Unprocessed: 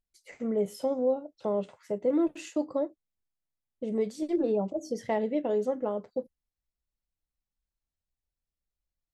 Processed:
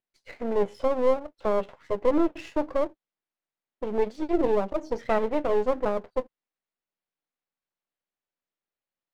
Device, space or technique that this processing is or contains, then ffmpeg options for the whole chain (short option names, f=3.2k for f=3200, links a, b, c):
crystal radio: -af "highpass=290,lowpass=2.9k,aeval=exprs='if(lt(val(0),0),0.251*val(0),val(0))':c=same,volume=8.5dB"